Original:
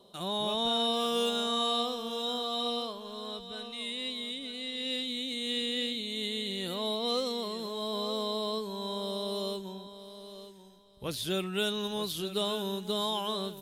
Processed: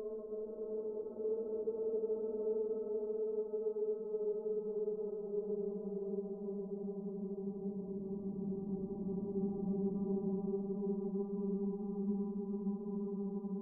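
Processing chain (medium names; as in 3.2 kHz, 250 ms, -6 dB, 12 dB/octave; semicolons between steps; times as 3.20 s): spectral contrast enhancement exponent 3.7; de-hum 69.66 Hz, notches 11; waveshaping leveller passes 1; peak limiter -31 dBFS, peak gain reduction 8.5 dB; valve stage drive 37 dB, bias 0.25; tremolo saw down 6.3 Hz, depth 70%; Gaussian low-pass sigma 13 samples; Paulstretch 48×, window 0.10 s, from 8.54 s; trim +7 dB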